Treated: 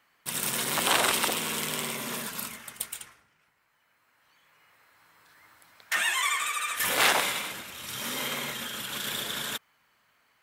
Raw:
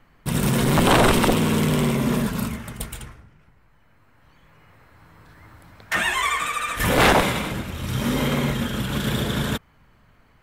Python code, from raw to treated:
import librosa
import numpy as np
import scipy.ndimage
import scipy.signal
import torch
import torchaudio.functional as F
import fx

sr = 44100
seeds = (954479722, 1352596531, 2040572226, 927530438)

y = fx.highpass(x, sr, hz=1400.0, slope=6)
y = fx.high_shelf(y, sr, hz=4000.0, db=5.5)
y = F.gain(torch.from_numpy(y), -3.5).numpy()